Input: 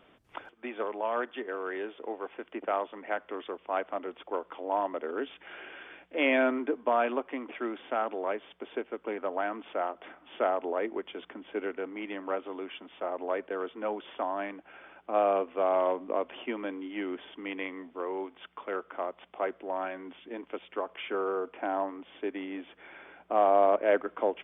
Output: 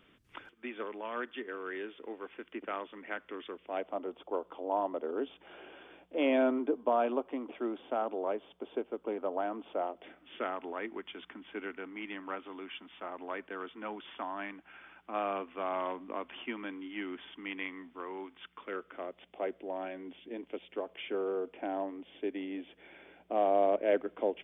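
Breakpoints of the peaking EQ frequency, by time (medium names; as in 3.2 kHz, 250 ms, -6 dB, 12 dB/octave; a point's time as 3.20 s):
peaking EQ -12 dB 1.3 oct
3.53 s 710 Hz
3.98 s 1.9 kHz
9.74 s 1.9 kHz
10.60 s 540 Hz
18.23 s 540 Hz
19.41 s 1.2 kHz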